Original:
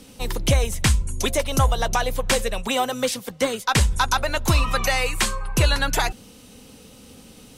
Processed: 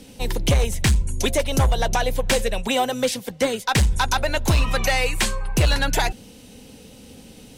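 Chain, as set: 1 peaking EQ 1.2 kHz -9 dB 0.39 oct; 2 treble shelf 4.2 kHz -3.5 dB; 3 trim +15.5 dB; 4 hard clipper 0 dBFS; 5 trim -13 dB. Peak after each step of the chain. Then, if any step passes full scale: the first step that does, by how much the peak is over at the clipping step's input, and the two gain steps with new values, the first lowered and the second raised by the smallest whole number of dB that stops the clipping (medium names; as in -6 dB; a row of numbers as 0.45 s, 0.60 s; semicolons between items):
-8.5 dBFS, -9.0 dBFS, +6.5 dBFS, 0.0 dBFS, -13.0 dBFS; step 3, 6.5 dB; step 3 +8.5 dB, step 5 -6 dB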